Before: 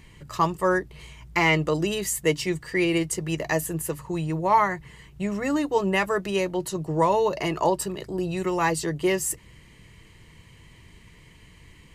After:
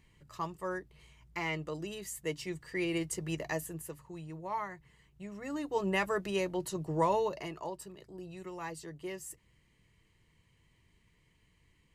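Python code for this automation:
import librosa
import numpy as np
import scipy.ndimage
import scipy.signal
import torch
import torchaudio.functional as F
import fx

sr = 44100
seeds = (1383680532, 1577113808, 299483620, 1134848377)

y = fx.gain(x, sr, db=fx.line((2.05, -15.0), (3.3, -8.0), (4.11, -17.0), (5.32, -17.0), (5.89, -7.5), (7.16, -7.5), (7.63, -18.0)))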